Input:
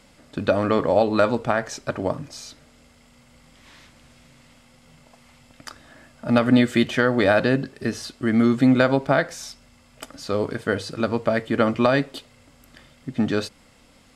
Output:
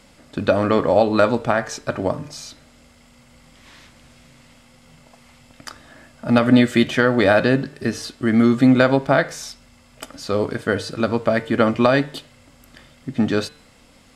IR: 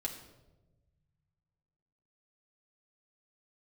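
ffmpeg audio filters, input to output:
-af "bandreject=f=149.5:t=h:w=4,bandreject=f=299:t=h:w=4,bandreject=f=448.5:t=h:w=4,bandreject=f=598:t=h:w=4,bandreject=f=747.5:t=h:w=4,bandreject=f=897:t=h:w=4,bandreject=f=1.0465k:t=h:w=4,bandreject=f=1.196k:t=h:w=4,bandreject=f=1.3455k:t=h:w=4,bandreject=f=1.495k:t=h:w=4,bandreject=f=1.6445k:t=h:w=4,bandreject=f=1.794k:t=h:w=4,bandreject=f=1.9435k:t=h:w=4,bandreject=f=2.093k:t=h:w=4,bandreject=f=2.2425k:t=h:w=4,bandreject=f=2.392k:t=h:w=4,bandreject=f=2.5415k:t=h:w=4,bandreject=f=2.691k:t=h:w=4,bandreject=f=2.8405k:t=h:w=4,bandreject=f=2.99k:t=h:w=4,bandreject=f=3.1395k:t=h:w=4,bandreject=f=3.289k:t=h:w=4,bandreject=f=3.4385k:t=h:w=4,bandreject=f=3.588k:t=h:w=4,bandreject=f=3.7375k:t=h:w=4,bandreject=f=3.887k:t=h:w=4,bandreject=f=4.0365k:t=h:w=4,volume=3dB"

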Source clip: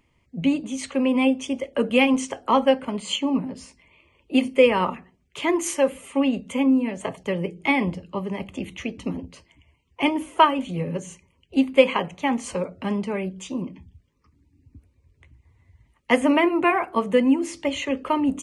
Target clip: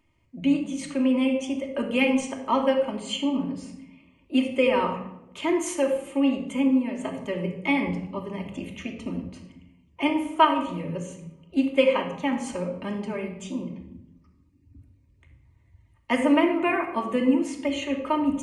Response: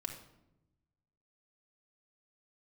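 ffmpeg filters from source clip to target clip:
-filter_complex "[1:a]atrim=start_sample=2205[a];[0:a][a]afir=irnorm=-1:irlink=0,volume=-2.5dB"

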